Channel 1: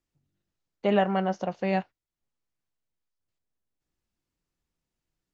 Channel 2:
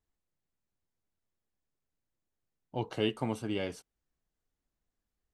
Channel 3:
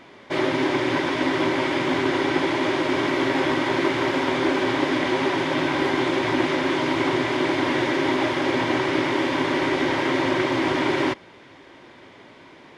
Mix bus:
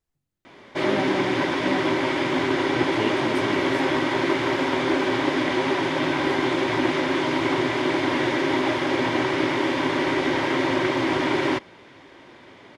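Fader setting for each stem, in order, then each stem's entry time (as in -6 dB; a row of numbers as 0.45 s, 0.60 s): -6.5 dB, +1.5 dB, -0.5 dB; 0.00 s, 0.00 s, 0.45 s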